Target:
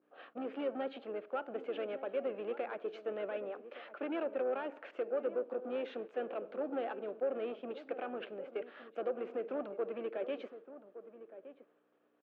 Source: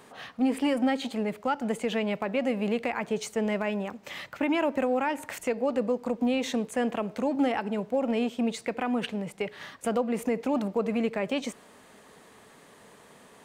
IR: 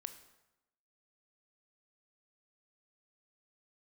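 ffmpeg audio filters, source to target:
-filter_complex "[0:a]agate=range=-33dB:threshold=-43dB:ratio=3:detection=peak,aeval=exprs='val(0)+0.00224*(sin(2*PI*60*n/s)+sin(2*PI*2*60*n/s)/2+sin(2*PI*3*60*n/s)/3+sin(2*PI*4*60*n/s)/4+sin(2*PI*5*60*n/s)/5)':c=same,asplit=2[a][b];[b]asetrate=33038,aresample=44100,atempo=1.33484,volume=-12dB[c];[a][c]amix=inputs=2:normalize=0,acrossover=split=1300[d][e];[d]crystalizer=i=4:c=0[f];[f][e]amix=inputs=2:normalize=0,atempo=1.1,asoftclip=type=tanh:threshold=-22.5dB,highpass=f=320:w=0.5412,highpass=f=320:w=1.3066,equalizer=f=350:t=q:w=4:g=4,equalizer=f=540:t=q:w=4:g=5,equalizer=f=950:t=q:w=4:g=-8,equalizer=f=1.4k:t=q:w=4:g=3,equalizer=f=2k:t=q:w=4:g=-9,lowpass=f=2.7k:w=0.5412,lowpass=f=2.7k:w=1.3066,asplit=2[g][h];[h]adelay=1166,volume=-13dB,highshelf=f=4k:g=-26.2[i];[g][i]amix=inputs=2:normalize=0,volume=-8dB"

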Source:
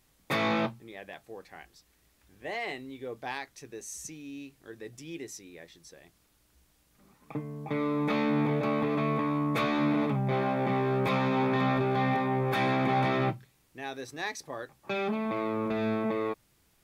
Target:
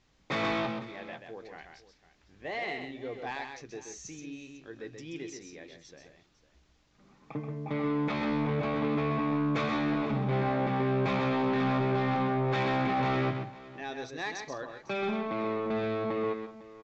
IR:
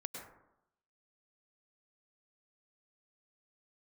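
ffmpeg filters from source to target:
-af "aresample=16000,asoftclip=type=tanh:threshold=-25dB,aresample=44100,lowpass=5.9k,aecho=1:1:130|175|502:0.501|0.158|0.133"

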